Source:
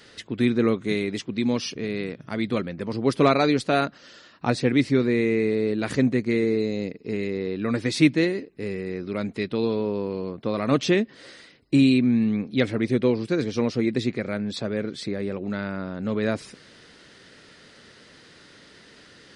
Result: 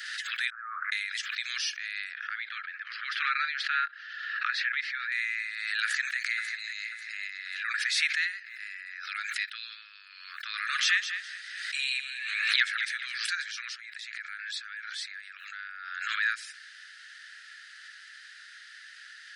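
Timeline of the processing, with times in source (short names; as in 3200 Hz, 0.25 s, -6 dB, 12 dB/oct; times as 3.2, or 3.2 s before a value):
0.5–0.92 steep low-pass 1100 Hz
2.14–5.12 air absorption 310 m
5.83–6.55 echo throw 0.54 s, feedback 35%, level -8 dB
7.69–9.05 high shelf 4100 Hz -6 dB
10.31–13.18 feedback echo 0.206 s, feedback 31%, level -9.5 dB
13.73–16.17 compressor 5:1, threshold -31 dBFS
whole clip: steep high-pass 1300 Hz 96 dB/oct; bell 1700 Hz +11 dB 0.23 oct; backwards sustainer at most 36 dB/s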